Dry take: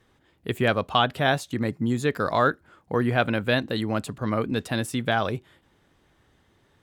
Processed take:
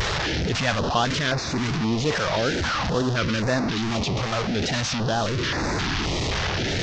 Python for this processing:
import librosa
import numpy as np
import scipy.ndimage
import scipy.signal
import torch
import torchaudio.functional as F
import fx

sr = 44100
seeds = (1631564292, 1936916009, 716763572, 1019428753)

y = fx.delta_mod(x, sr, bps=32000, step_db=-17.5)
y = fx.wow_flutter(y, sr, seeds[0], rate_hz=2.1, depth_cents=110.0)
y = fx.filter_held_notch(y, sr, hz=3.8, low_hz=270.0, high_hz=3100.0)